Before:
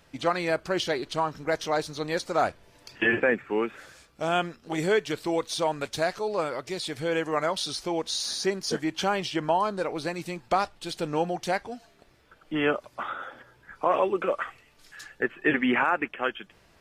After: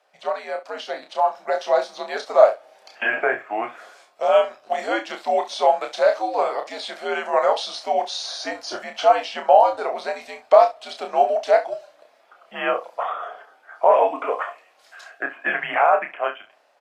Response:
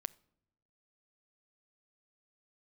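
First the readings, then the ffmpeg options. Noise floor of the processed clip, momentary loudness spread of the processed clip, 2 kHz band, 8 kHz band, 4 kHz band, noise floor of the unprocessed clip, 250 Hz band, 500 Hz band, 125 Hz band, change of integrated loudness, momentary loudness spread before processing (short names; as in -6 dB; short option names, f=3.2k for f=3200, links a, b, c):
-57 dBFS, 15 LU, +2.5 dB, -3.5 dB, +1.0 dB, -60 dBFS, -8.0 dB, +8.5 dB, under -15 dB, +6.5 dB, 9 LU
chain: -filter_complex "[0:a]afreqshift=-100,aecho=1:1:30|67:0.501|0.178,dynaudnorm=f=520:g=5:m=11.5dB,highpass=f=660:t=q:w=4.9,acrossover=split=7100[a][b];[b]acompressor=threshold=-49dB:ratio=4:attack=1:release=60[c];[a][c]amix=inputs=2:normalize=0,asplit=2[d][e];[1:a]atrim=start_sample=2205,highshelf=f=8.3k:g=-11.5[f];[e][f]afir=irnorm=-1:irlink=0,volume=6dB[g];[d][g]amix=inputs=2:normalize=0,volume=-15dB"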